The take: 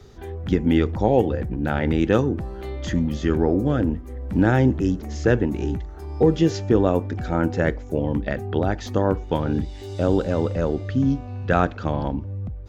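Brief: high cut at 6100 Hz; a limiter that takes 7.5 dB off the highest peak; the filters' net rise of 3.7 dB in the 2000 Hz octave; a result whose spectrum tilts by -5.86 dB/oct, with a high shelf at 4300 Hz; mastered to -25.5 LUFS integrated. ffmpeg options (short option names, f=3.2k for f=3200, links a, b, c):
-af "lowpass=6.1k,equalizer=f=2k:t=o:g=6,highshelf=f=4.3k:g=-6.5,volume=-1dB,alimiter=limit=-12dB:level=0:latency=1"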